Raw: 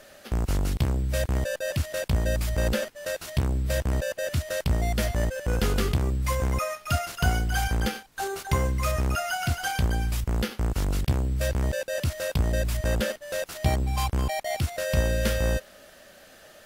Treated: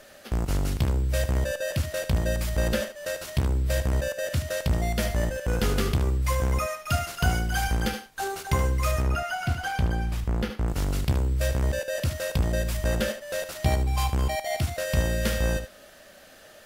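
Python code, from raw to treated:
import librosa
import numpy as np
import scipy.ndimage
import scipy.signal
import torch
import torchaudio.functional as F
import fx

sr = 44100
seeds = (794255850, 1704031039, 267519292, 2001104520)

y = fx.high_shelf(x, sr, hz=3900.0, db=-10.5, at=(9.02, 10.68))
y = y + 10.0 ** (-10.5 / 20.0) * np.pad(y, (int(75 * sr / 1000.0), 0))[:len(y)]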